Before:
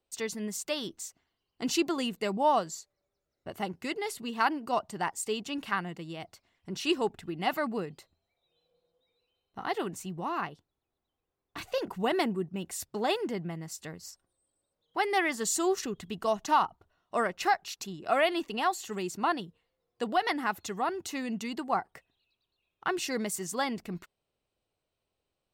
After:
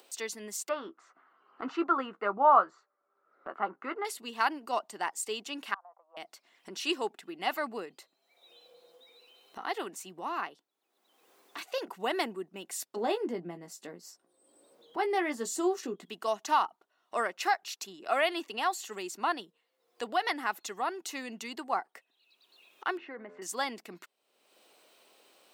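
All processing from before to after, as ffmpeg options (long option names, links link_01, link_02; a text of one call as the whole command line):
ffmpeg -i in.wav -filter_complex "[0:a]asettb=1/sr,asplit=3[link_01][link_02][link_03];[link_01]atrim=end=0.694[link_04];[link_02]atrim=start=0.69:end=4.05,asetpts=PTS-STARTPTS,afade=type=in:duration=0.004:curve=qsin,afade=type=out:start_time=3.356:duration=0.004:curve=qsin,lowpass=frequency=1300:width_type=q:width=6.7,asplit=2[link_05][link_06];[link_06]adelay=15,volume=-10.5dB[link_07];[link_05][link_07]amix=inputs=2:normalize=0,atrim=end_sample=148176[link_08];[link_03]atrim=start=4.046[link_09];[link_04][link_08]acrossfade=duration=0.004:curve1=hsin:curve2=qsin[link_10];[link_10][link_09]acrossfade=duration=0.004:curve1=qsin:curve2=hsin,asettb=1/sr,asplit=3[link_11][link_12][link_13];[link_11]atrim=end=5.744[link_14];[link_12]atrim=start=5.74:end=6.17,asetpts=PTS-STARTPTS,afade=type=in:duration=0.004:curve=qsin,afade=type=out:start_time=0.426:duration=0.004:curve=qsin,asuperpass=centerf=850:order=8:qfactor=1.4,acompressor=threshold=-44dB:ratio=16:attack=3.2:release=140:knee=1:detection=peak[link_15];[link_13]atrim=start=6.166[link_16];[link_14][link_15]acrossfade=duration=0.004:curve1=hsin:curve2=qsin[link_17];[link_17][link_16]acrossfade=duration=0.004:curve1=qsin:curve2=hsin,asettb=1/sr,asplit=3[link_18][link_19][link_20];[link_18]atrim=end=12.964[link_21];[link_19]atrim=start=12.96:end=16.05,asetpts=PTS-STARTPTS,afade=type=in:duration=0.004:curve=qsin,afade=type=out:start_time=3.086:duration=0.004:curve=qsin,tiltshelf=frequency=720:gain=8,asplit=2[link_22][link_23];[link_23]adelay=17,volume=-8dB[link_24];[link_22][link_24]amix=inputs=2:normalize=0,atrim=end_sample=136269[link_25];[link_20]atrim=start=16.046[link_26];[link_21][link_25]acrossfade=duration=0.004:curve1=hsin:curve2=qsin[link_27];[link_27][link_26]acrossfade=duration=0.004:curve1=qsin:curve2=hsin,asettb=1/sr,asplit=3[link_28][link_29][link_30];[link_28]atrim=end=22.974[link_31];[link_29]atrim=start=22.97:end=23.42,asetpts=PTS-STARTPTS,afade=type=in:duration=0.004:curve=qsin,afade=type=out:start_time=0.446:duration=0.004:curve=qsin,lowpass=frequency=1900:width=0.5412,lowpass=frequency=1900:width=1.3066,bandreject=frequency=85.92:width_type=h:width=4,bandreject=frequency=171.84:width_type=h:width=4,bandreject=frequency=257.76:width_type=h:width=4,bandreject=frequency=343.68:width_type=h:width=4,bandreject=frequency=429.6:width_type=h:width=4,bandreject=frequency=515.52:width_type=h:width=4,bandreject=frequency=601.44:width_type=h:width=4,bandreject=frequency=687.36:width_type=h:width=4,bandreject=frequency=773.28:width_type=h:width=4,bandreject=frequency=859.2:width_type=h:width=4,bandreject=frequency=945.12:width_type=h:width=4,bandreject=frequency=1031.04:width_type=h:width=4,bandreject=frequency=1116.96:width_type=h:width=4,bandreject=frequency=1202.88:width_type=h:width=4,bandreject=frequency=1288.8:width_type=h:width=4,bandreject=frequency=1374.72:width_type=h:width=4,bandreject=frequency=1460.64:width_type=h:width=4,bandreject=frequency=1546.56:width_type=h:width=4,bandreject=frequency=1632.48:width_type=h:width=4,bandreject=frequency=1718.4:width_type=h:width=4,acompressor=threshold=-35dB:ratio=6:attack=3.2:release=140:knee=1:detection=peak[link_32];[link_30]atrim=start=23.416[link_33];[link_31][link_32]acrossfade=duration=0.004:curve1=hsin:curve2=qsin[link_34];[link_34][link_33]acrossfade=duration=0.004:curve1=qsin:curve2=hsin,highpass=frequency=240:width=0.5412,highpass=frequency=240:width=1.3066,lowshelf=frequency=480:gain=-7.5,acompressor=mode=upward:threshold=-42dB:ratio=2.5" out.wav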